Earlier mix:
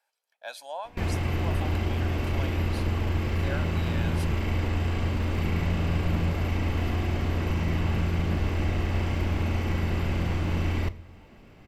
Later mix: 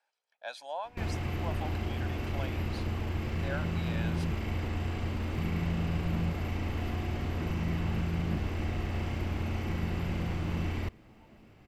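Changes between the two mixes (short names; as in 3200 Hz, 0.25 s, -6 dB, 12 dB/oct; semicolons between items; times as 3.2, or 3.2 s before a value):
speech: add air absorption 65 m; first sound -4.0 dB; reverb: off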